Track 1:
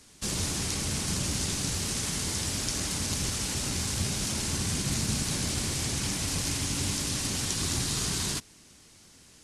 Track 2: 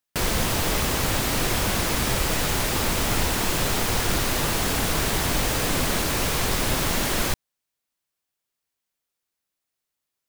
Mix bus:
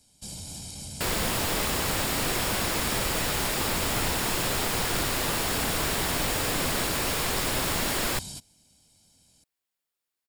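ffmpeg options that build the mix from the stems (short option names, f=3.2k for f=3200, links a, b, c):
-filter_complex "[0:a]equalizer=f=1.6k:w=0.97:g=-14.5,aecho=1:1:1.3:0.61,alimiter=limit=-21.5dB:level=0:latency=1:release=110,volume=-5.5dB[a];[1:a]adelay=850,volume=-2.5dB[b];[a][b]amix=inputs=2:normalize=0,lowshelf=f=180:g=-6,bandreject=f=6.1k:w=11"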